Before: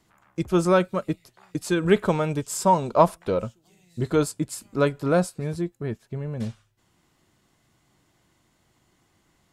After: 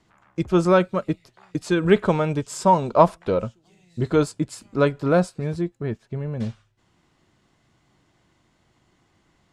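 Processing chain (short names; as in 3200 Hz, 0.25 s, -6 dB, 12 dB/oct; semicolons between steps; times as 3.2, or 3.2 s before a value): air absorption 66 m; gain +2.5 dB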